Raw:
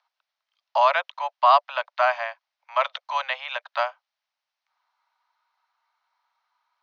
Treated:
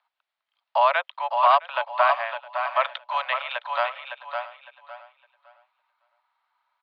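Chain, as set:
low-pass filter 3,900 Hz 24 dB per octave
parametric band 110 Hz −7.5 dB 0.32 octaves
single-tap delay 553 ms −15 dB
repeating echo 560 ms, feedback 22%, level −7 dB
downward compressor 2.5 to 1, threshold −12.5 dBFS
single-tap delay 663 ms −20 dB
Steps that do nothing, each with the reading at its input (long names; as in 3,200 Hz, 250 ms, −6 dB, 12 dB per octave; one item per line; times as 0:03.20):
parametric band 110 Hz: nothing at its input below 480 Hz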